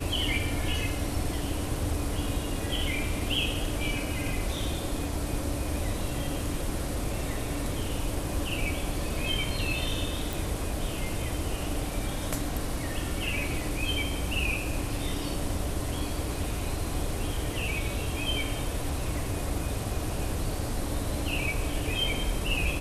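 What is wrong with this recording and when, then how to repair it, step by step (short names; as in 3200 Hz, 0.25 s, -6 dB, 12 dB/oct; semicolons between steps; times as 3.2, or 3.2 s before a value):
10.33 pop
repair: de-click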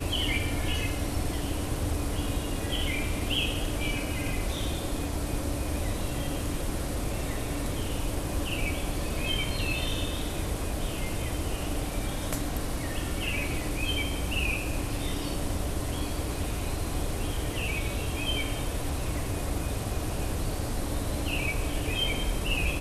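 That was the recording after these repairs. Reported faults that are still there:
none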